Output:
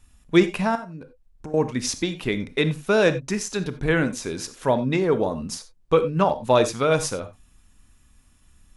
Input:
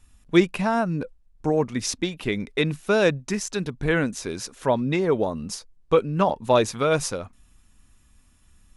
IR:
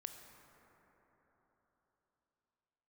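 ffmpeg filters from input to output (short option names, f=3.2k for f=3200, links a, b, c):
-filter_complex "[0:a]asettb=1/sr,asplit=3[a][b][c];[a]atrim=end=0.754[d];[b]atrim=start=0.75:end=1.54,asetpts=PTS-STARTPTS,afade=t=in:d=0.004:c=qsin,afade=t=out:st=0.786:d=0.004:c=qsin,acompressor=threshold=-36dB:ratio=8[e];[c]atrim=start=1.536[f];[d][e]acrossfade=d=0.004:c1=hsin:c2=qsin[g];[g][f]acrossfade=d=0.004:c1=qsin:c2=hsin[h];[1:a]atrim=start_sample=2205,atrim=end_sample=4410[i];[h][i]afir=irnorm=-1:irlink=0,volume=6dB"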